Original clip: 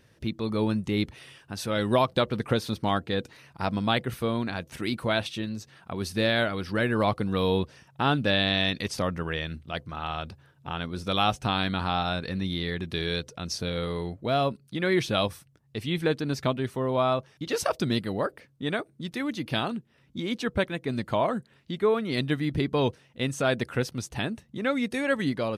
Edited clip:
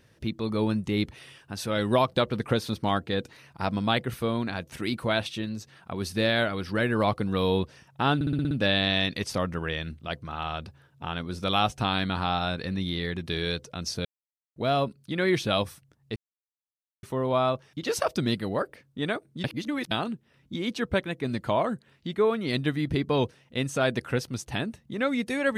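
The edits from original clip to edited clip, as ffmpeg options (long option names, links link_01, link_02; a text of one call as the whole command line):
ffmpeg -i in.wav -filter_complex "[0:a]asplit=13[link_01][link_02][link_03][link_04][link_05][link_06][link_07][link_08][link_09][link_10][link_11][link_12][link_13];[link_01]atrim=end=8.212[link_14];[link_02]atrim=start=8.148:end=8.212[link_15];[link_03]atrim=start=8.148:end=8.212[link_16];[link_04]atrim=start=8.148:end=8.212[link_17];[link_05]atrim=start=8.148:end=8.212[link_18];[link_06]atrim=start=8.148:end=8.212[link_19];[link_07]atrim=start=8.148:end=13.69,asetpts=PTS-STARTPTS,afade=type=out:start_time=5.538:duration=0.004:curve=hsin[link_20];[link_08]atrim=start=13.69:end=14.2,asetpts=PTS-STARTPTS,volume=0[link_21];[link_09]atrim=start=14.2:end=15.8,asetpts=PTS-STARTPTS,afade=type=in:duration=0.004:curve=hsin,afade=type=out:start_time=1.596:duration=0.004:curve=hsin[link_22];[link_10]atrim=start=15.8:end=16.67,asetpts=PTS-STARTPTS,volume=0[link_23];[link_11]atrim=start=16.67:end=19.082,asetpts=PTS-STARTPTS,afade=type=in:duration=0.004:curve=hsin[link_24];[link_12]atrim=start=19.078:end=19.552,asetpts=PTS-STARTPTS,areverse[link_25];[link_13]atrim=start=19.548[link_26];[link_14][link_15]acrossfade=duration=0.004:curve1=hsin:curve2=hsin[link_27];[link_27][link_16]acrossfade=duration=0.004:curve1=hsin:curve2=hsin[link_28];[link_28][link_17]acrossfade=duration=0.004:curve1=hsin:curve2=hsin[link_29];[link_29][link_18]acrossfade=duration=0.004:curve1=hsin:curve2=hsin[link_30];[link_30][link_19]acrossfade=duration=0.004:curve1=hsin:curve2=hsin[link_31];[link_20][link_21][link_22][link_23][link_24]concat=n=5:v=0:a=1[link_32];[link_31][link_32]acrossfade=duration=0.004:curve1=hsin:curve2=hsin[link_33];[link_33][link_25]acrossfade=duration=0.004:curve1=hsin:curve2=hsin[link_34];[link_34][link_26]acrossfade=duration=0.004:curve1=hsin:curve2=hsin" out.wav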